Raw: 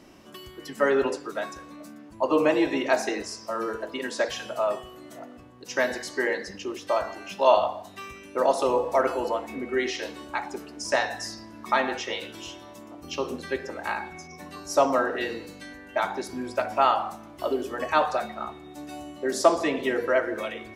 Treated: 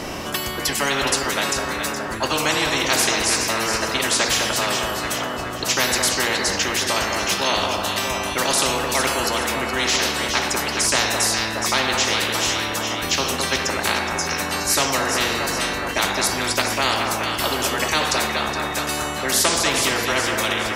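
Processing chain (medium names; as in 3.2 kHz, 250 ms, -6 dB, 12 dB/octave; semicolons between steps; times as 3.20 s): echo whose repeats swap between lows and highs 209 ms, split 1.3 kHz, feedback 64%, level -9.5 dB; spectrum-flattening compressor 4:1; trim +3 dB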